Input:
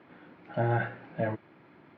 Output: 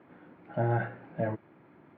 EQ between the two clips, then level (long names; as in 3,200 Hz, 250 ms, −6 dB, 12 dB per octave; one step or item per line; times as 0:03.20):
low-pass filter 1,500 Hz 6 dB per octave
high-frequency loss of the air 51 metres
0.0 dB